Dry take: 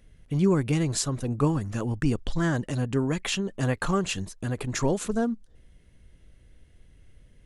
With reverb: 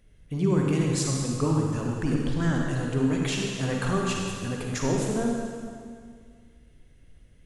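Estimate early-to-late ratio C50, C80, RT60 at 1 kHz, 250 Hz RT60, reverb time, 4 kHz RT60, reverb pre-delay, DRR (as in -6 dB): -0.5 dB, 1.5 dB, 2.0 s, 2.2 s, 2.0 s, 1.9 s, 36 ms, -1.0 dB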